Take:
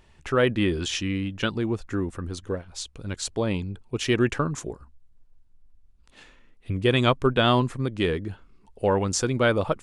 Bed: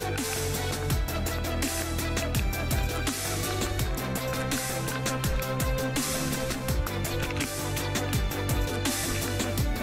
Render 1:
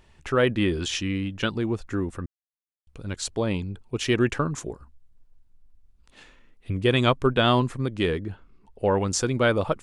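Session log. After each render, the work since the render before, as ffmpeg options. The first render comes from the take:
-filter_complex "[0:a]asettb=1/sr,asplit=3[s0][s1][s2];[s0]atrim=end=8.204[s3];[s1]atrim=start=8.2:end=8.94,asetpts=PTS-STARTPTS,afade=t=in:d=0.004:c=qsin,afade=t=out:st=0.736:d=0.004:c=qsin,highshelf=f=4100:g=-8[s4];[s2]atrim=start=8.936[s5];[s3][s4]acrossfade=d=0.004:c1=hsin:c2=qsin[s6];[s6][s5]acrossfade=d=0.004:c1=qsin:c2=hsin,asplit=3[s7][s8][s9];[s7]atrim=end=2.26,asetpts=PTS-STARTPTS,afade=t=out:st=2.256:d=0.004:c=hsin[s10];[s8]atrim=start=2.26:end=2.87,asetpts=PTS-STARTPTS,volume=0[s11];[s9]atrim=start=2.87,asetpts=PTS-STARTPTS,afade=t=in:d=0.004:c=hsin[s12];[s10][s11][s12]concat=n=3:v=0:a=1"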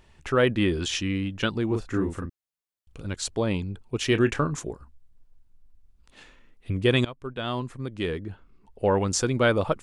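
-filter_complex "[0:a]asettb=1/sr,asplit=3[s0][s1][s2];[s0]atrim=end=1.674[s3];[s1]atrim=start=1.67:end=3.07,asetpts=PTS-STARTPTS,afade=t=in:d=0.004:c=qsin,afade=t=out:st=1.396:d=0.004:c=qsin,asplit=2[s4][s5];[s5]adelay=37,volume=0.631[s6];[s4][s6]amix=inputs=2:normalize=0,atrim=end_sample=61740[s7];[s2]atrim=start=3.066[s8];[s3][s7]acrossfade=d=0.004:c1=hsin:c2=qsin[s9];[s9][s8]acrossfade=d=0.004:c1=qsin:c2=hsin,asettb=1/sr,asplit=3[s10][s11][s12];[s10]atrim=end=4.094[s13];[s11]atrim=start=4.09:end=4.56,asetpts=PTS-STARTPTS,afade=t=in:d=0.004:c=qsin,afade=t=out:st=0.466:d=0.004:c=qsin,asplit=2[s14][s15];[s15]adelay=27,volume=0.251[s16];[s14][s16]amix=inputs=2:normalize=0,atrim=end_sample=20727[s17];[s12]atrim=start=4.556[s18];[s13][s17]acrossfade=d=0.004:c1=hsin:c2=qsin[s19];[s19][s18]acrossfade=d=0.004:c1=qsin:c2=hsin,asplit=2[s20][s21];[s20]atrim=end=7.05,asetpts=PTS-STARTPTS,afade=t=out:st=7.046:d=0.004:c=hsin:silence=0.0891251[s22];[s21]atrim=start=7.05,asetpts=PTS-STARTPTS,afade=t=in:d=1.8:silence=0.0891251[s23];[s22][s23]concat=n=2:v=0:a=1"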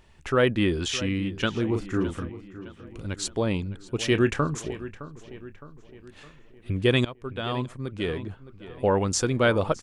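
-filter_complex "[0:a]asplit=2[s0][s1];[s1]adelay=613,lowpass=f=3500:p=1,volume=0.178,asplit=2[s2][s3];[s3]adelay=613,lowpass=f=3500:p=1,volume=0.52,asplit=2[s4][s5];[s5]adelay=613,lowpass=f=3500:p=1,volume=0.52,asplit=2[s6][s7];[s7]adelay=613,lowpass=f=3500:p=1,volume=0.52,asplit=2[s8][s9];[s9]adelay=613,lowpass=f=3500:p=1,volume=0.52[s10];[s0][s2][s4][s6][s8][s10]amix=inputs=6:normalize=0"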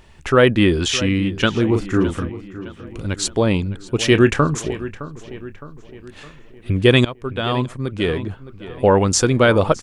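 -af "volume=2.66,alimiter=limit=0.794:level=0:latency=1"

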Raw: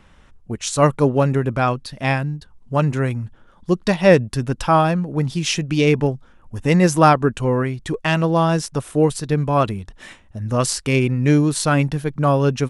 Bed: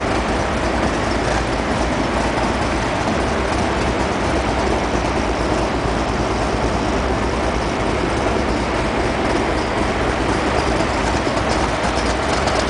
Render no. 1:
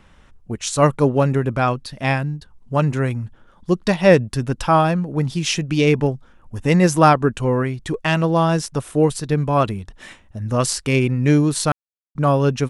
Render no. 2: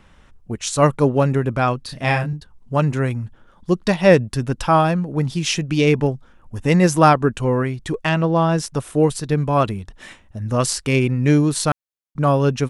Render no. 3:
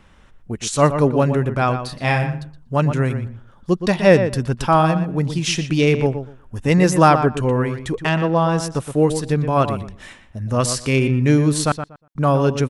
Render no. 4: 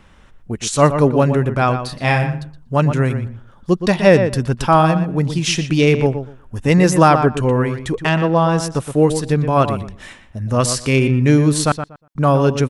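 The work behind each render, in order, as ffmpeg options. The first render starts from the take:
-filter_complex "[0:a]asplit=3[s0][s1][s2];[s0]atrim=end=11.72,asetpts=PTS-STARTPTS,afade=t=out:st=11.716:d=0.004:c=hsin[s3];[s1]atrim=start=11.72:end=12.15,asetpts=PTS-STARTPTS,volume=0[s4];[s2]atrim=start=12.15,asetpts=PTS-STARTPTS,afade=t=in:d=0.004:c=hsin[s5];[s3][s4][s5]concat=n=3:v=0:a=1"
-filter_complex "[0:a]asettb=1/sr,asplit=3[s0][s1][s2];[s0]atrim=end=1.844[s3];[s1]atrim=start=1.84:end=2.33,asetpts=PTS-STARTPTS,afade=t=in:d=0.004:c=qsin,afade=t=out:st=0.486:d=0.004:c=qsin,asplit=2[s4][s5];[s5]adelay=32,volume=0.631[s6];[s4][s6]amix=inputs=2:normalize=0,atrim=end_sample=21609[s7];[s2]atrim=start=2.326[s8];[s3][s7]acrossfade=d=0.004:c1=hsin:c2=qsin[s9];[s9][s8]acrossfade=d=0.004:c1=qsin:c2=hsin,asettb=1/sr,asplit=3[s10][s11][s12];[s10]atrim=end=8.094[s13];[s11]atrim=start=8.09:end=8.58,asetpts=PTS-STARTPTS,afade=t=in:d=0.004:c=qsin,afade=t=out:st=0.486:d=0.004:c=qsin,lowpass=f=3000:p=1[s14];[s12]atrim=start=8.576[s15];[s13][s14]acrossfade=d=0.004:c1=hsin:c2=qsin[s16];[s16][s15]acrossfade=d=0.004:c1=qsin:c2=hsin"
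-filter_complex "[0:a]asplit=2[s0][s1];[s1]adelay=120,lowpass=f=2700:p=1,volume=0.355,asplit=2[s2][s3];[s3]adelay=120,lowpass=f=2700:p=1,volume=0.18,asplit=2[s4][s5];[s5]adelay=120,lowpass=f=2700:p=1,volume=0.18[s6];[s0][s2][s4][s6]amix=inputs=4:normalize=0"
-af "volume=1.33,alimiter=limit=0.891:level=0:latency=1"

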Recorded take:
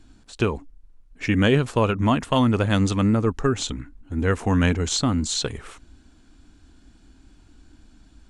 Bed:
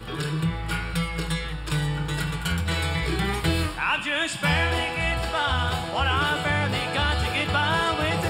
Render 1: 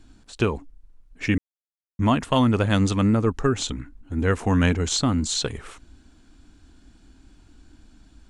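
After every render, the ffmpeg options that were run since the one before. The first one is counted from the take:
-filter_complex "[0:a]asplit=3[s0][s1][s2];[s0]atrim=end=1.38,asetpts=PTS-STARTPTS,afade=t=out:st=1.376:d=0.004:c=hsin[s3];[s1]atrim=start=1.38:end=1.99,asetpts=PTS-STARTPTS,volume=0[s4];[s2]atrim=start=1.99,asetpts=PTS-STARTPTS,afade=t=in:d=0.004:c=hsin[s5];[s3][s4][s5]concat=n=3:v=0:a=1"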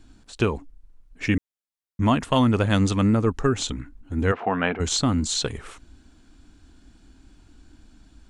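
-filter_complex "[0:a]asplit=3[s0][s1][s2];[s0]afade=t=out:st=4.31:d=0.02[s3];[s1]highpass=260,equalizer=f=290:t=q:w=4:g=-6,equalizer=f=720:t=q:w=4:g=9,equalizer=f=1300:t=q:w=4:g=4,lowpass=f=3100:w=0.5412,lowpass=f=3100:w=1.3066,afade=t=in:st=4.31:d=0.02,afade=t=out:st=4.79:d=0.02[s4];[s2]afade=t=in:st=4.79:d=0.02[s5];[s3][s4][s5]amix=inputs=3:normalize=0"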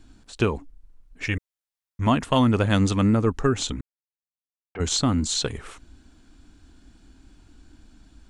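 -filter_complex "[0:a]asettb=1/sr,asplit=3[s0][s1][s2];[s0]atrim=end=1.244[s3];[s1]atrim=start=1.24:end=2.07,asetpts=PTS-STARTPTS,afade=t=in:d=0.004:c=qsin,afade=t=out:st=0.826:d=0.004:c=qsin,equalizer=f=240:w=1.5:g=-13.5[s4];[s2]atrim=start=2.066[s5];[s3][s4]acrossfade=d=0.004:c1=hsin:c2=qsin[s6];[s6][s5]acrossfade=d=0.004:c1=qsin:c2=hsin,asplit=3[s7][s8][s9];[s7]atrim=end=3.81,asetpts=PTS-STARTPTS,afade=t=out:st=3.806:d=0.004:c=hsin[s10];[s8]atrim=start=3.81:end=4.75,asetpts=PTS-STARTPTS,volume=0[s11];[s9]atrim=start=4.75,asetpts=PTS-STARTPTS,afade=t=in:d=0.004:c=hsin[s12];[s10][s11][s12]concat=n=3:v=0:a=1"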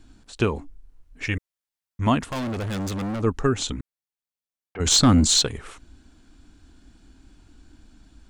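-filter_complex "[0:a]asettb=1/sr,asplit=3[s0][s1][s2];[s0]atrim=end=0.544[s3];[s1]atrim=start=0.54:end=1.24,asetpts=PTS-STARTPTS,afade=t=in:d=0.004:c=qsin,afade=t=out:st=0.696:d=0.004:c=qsin,asplit=2[s4][s5];[s5]adelay=24,volume=0.708[s6];[s4][s6]amix=inputs=2:normalize=0,atrim=end_sample=30870[s7];[s2]atrim=start=1.236[s8];[s3][s7]acrossfade=d=0.004:c1=hsin:c2=qsin[s9];[s9][s8]acrossfade=d=0.004:c1=qsin:c2=hsin,asettb=1/sr,asplit=3[s10][s11][s12];[s10]atrim=end=2.214[s13];[s11]atrim=start=2.21:end=3.23,asetpts=PTS-STARTPTS,afade=t=in:d=0.004:c=qsin,afade=t=out:st=1.016:d=0.004:c=qsin,volume=21.1,asoftclip=hard,volume=0.0473[s14];[s12]atrim=start=3.226[s15];[s13][s14]acrossfade=d=0.004:c1=hsin:c2=qsin[s16];[s16][s15]acrossfade=d=0.004:c1=qsin:c2=hsin,asplit=3[s17][s18][s19];[s17]afade=t=out:st=4.85:d=0.02[s20];[s18]aeval=exprs='0.335*sin(PI/2*1.58*val(0)/0.335)':c=same,afade=t=in:st=4.85:d=0.02,afade=t=out:st=5.41:d=0.02[s21];[s19]afade=t=in:st=5.41:d=0.02[s22];[s20][s21][s22]amix=inputs=3:normalize=0"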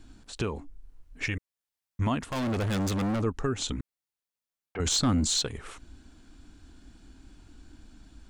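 -af "alimiter=limit=0.119:level=0:latency=1:release=431"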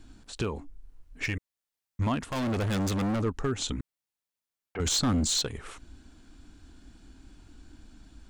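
-af "asoftclip=type=hard:threshold=0.0841"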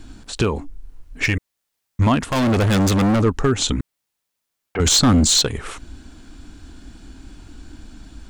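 -af "volume=3.76"

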